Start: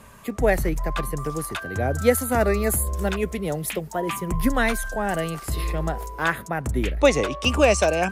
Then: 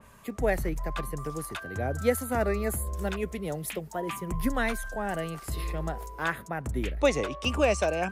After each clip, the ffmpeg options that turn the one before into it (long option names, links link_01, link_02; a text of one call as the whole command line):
ffmpeg -i in.wav -af "adynamicequalizer=threshold=0.0141:dfrequency=3200:dqfactor=0.7:tfrequency=3200:tqfactor=0.7:attack=5:release=100:ratio=0.375:range=2.5:mode=cutabove:tftype=highshelf,volume=-6.5dB" out.wav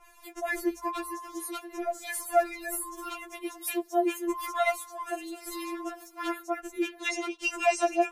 ffmpeg -i in.wav -af "afftfilt=real='re*4*eq(mod(b,16),0)':imag='im*4*eq(mod(b,16),0)':win_size=2048:overlap=0.75,volume=3.5dB" out.wav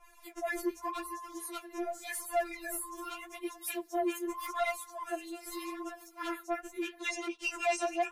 ffmpeg -i in.wav -af "flanger=delay=1.7:depth=9.9:regen=33:speed=0.84:shape=sinusoidal,asoftclip=type=tanh:threshold=-23.5dB" out.wav